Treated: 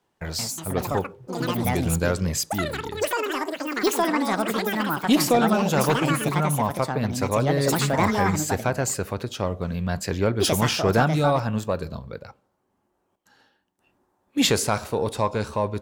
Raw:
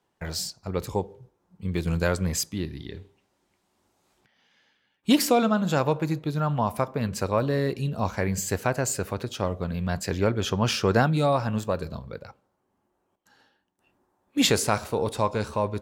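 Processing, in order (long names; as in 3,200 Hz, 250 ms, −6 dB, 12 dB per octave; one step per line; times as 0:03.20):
in parallel at −7.5 dB: sine wavefolder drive 4 dB, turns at −7 dBFS
on the sum: delay with pitch and tempo change per echo 236 ms, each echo +6 semitones, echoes 3
level −4.5 dB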